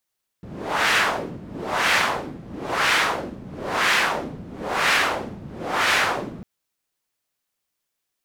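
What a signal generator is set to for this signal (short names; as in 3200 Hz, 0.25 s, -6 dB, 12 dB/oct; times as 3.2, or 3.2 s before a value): wind-like swept noise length 6.00 s, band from 170 Hz, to 2000 Hz, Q 1.3, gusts 6, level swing 19 dB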